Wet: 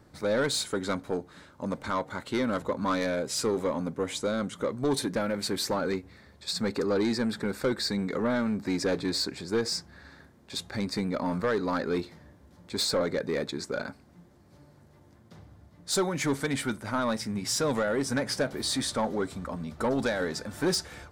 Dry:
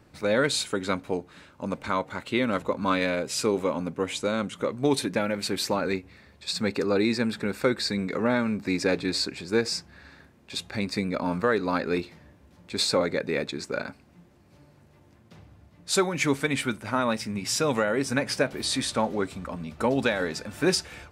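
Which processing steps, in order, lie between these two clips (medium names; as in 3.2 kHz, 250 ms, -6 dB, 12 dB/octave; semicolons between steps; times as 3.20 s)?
saturation -20 dBFS, distortion -13 dB; peaking EQ 2.6 kHz -9 dB 0.43 oct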